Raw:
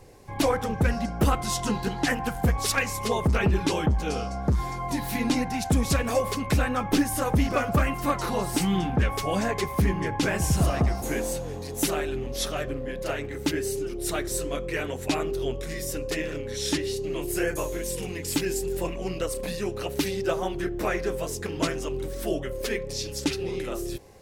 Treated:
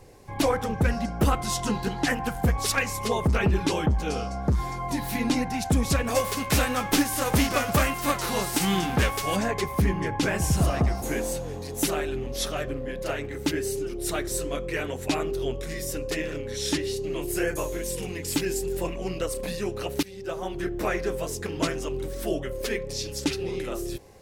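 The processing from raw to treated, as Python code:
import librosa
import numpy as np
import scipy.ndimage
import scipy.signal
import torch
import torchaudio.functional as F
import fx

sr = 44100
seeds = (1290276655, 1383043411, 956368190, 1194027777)

y = fx.envelope_flatten(x, sr, power=0.6, at=(6.14, 9.35), fade=0.02)
y = fx.edit(y, sr, fx.fade_in_from(start_s=20.03, length_s=0.66, floor_db=-19.5), tone=tone)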